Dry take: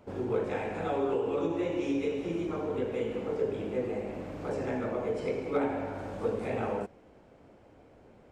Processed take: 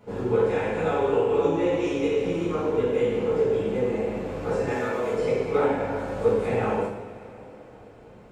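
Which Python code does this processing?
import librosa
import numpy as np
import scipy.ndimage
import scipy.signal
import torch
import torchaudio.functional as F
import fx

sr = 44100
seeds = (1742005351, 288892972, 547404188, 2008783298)

y = fx.tilt_eq(x, sr, slope=2.5, at=(4.7, 5.13))
y = fx.rev_double_slope(y, sr, seeds[0], early_s=0.51, late_s=3.9, knee_db=-19, drr_db=-7.0)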